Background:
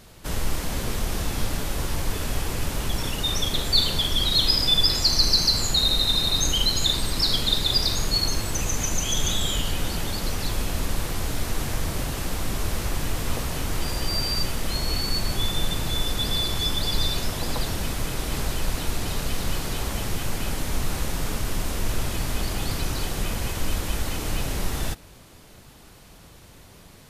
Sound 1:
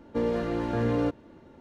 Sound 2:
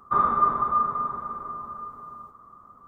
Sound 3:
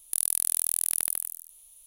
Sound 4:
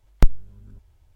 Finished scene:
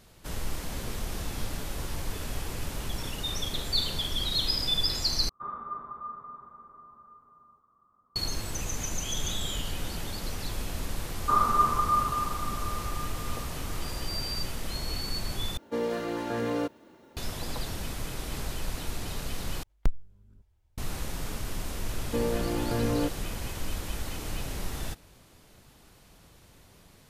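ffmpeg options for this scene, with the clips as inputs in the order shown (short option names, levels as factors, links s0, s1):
-filter_complex "[2:a]asplit=2[s0][s1];[1:a]asplit=2[s2][s3];[0:a]volume=0.422[s4];[s2]aemphasis=mode=production:type=bsi[s5];[s4]asplit=4[s6][s7][s8][s9];[s6]atrim=end=5.294[s10];[s0]atrim=end=2.87,asetpts=PTS-STARTPTS,volume=0.15[s11];[s7]atrim=start=8.156:end=15.574[s12];[s5]atrim=end=1.6,asetpts=PTS-STARTPTS,volume=0.944[s13];[s8]atrim=start=17.166:end=19.634[s14];[4:a]atrim=end=1.15,asetpts=PTS-STARTPTS,volume=0.266[s15];[s9]atrim=start=20.776[s16];[s1]atrim=end=2.87,asetpts=PTS-STARTPTS,volume=0.75,afade=t=in:d=0.004:c=hsin,afade=t=out:st=2.866:d=0.004:c=hsin,adelay=11170[s17];[s3]atrim=end=1.6,asetpts=PTS-STARTPTS,volume=0.794,afade=t=in:d=0.004:c=hsin,afade=t=out:st=1.596:d=0.004:c=hsin,adelay=21980[s18];[s10][s11]acrossfade=d=0.004:c1=hsin:c2=hsin[s19];[s19][s12]acrossfade=d=0.004:c1=hsin:c2=hsin[s20];[s20][s13]acrossfade=d=0.004:c1=hsin:c2=hsin[s21];[s21][s14]acrossfade=d=0.004:c1=hsin:c2=hsin[s22];[s22][s15]acrossfade=d=0.004:c1=hsin:c2=hsin[s23];[s23][s16]acrossfade=d=0.004:c1=hsin:c2=hsin[s24];[s24][s17][s18]amix=inputs=3:normalize=0"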